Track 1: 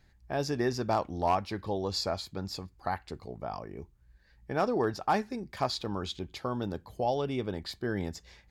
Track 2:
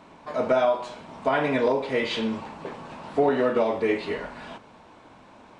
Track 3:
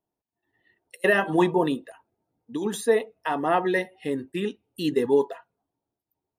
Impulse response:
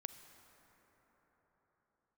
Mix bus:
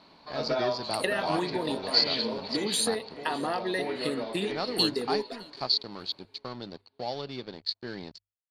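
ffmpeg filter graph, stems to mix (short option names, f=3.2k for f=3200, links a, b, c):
-filter_complex "[0:a]highpass=f=120:w=0.5412,highpass=f=120:w=1.3066,aeval=exprs='sgn(val(0))*max(abs(val(0))-0.00708,0)':c=same,volume=-4.5dB[a];[1:a]volume=-8dB,asplit=2[b][c];[c]volume=-5.5dB[d];[2:a]acompressor=threshold=-30dB:ratio=6,aexciter=amount=8.9:drive=9:freq=7.7k,volume=1.5dB,asplit=3[e][f][g];[f]volume=-24dB[h];[g]apad=whole_len=246527[i];[b][i]sidechaincompress=threshold=-31dB:ratio=8:attack=16:release=1300[j];[d][h]amix=inputs=2:normalize=0,aecho=0:1:611|1222|1833|2444:1|0.27|0.0729|0.0197[k];[a][j][e][k]amix=inputs=4:normalize=0,lowpass=f=4.4k:t=q:w=15,bandreject=f=50:t=h:w=6,bandreject=f=100:t=h:w=6"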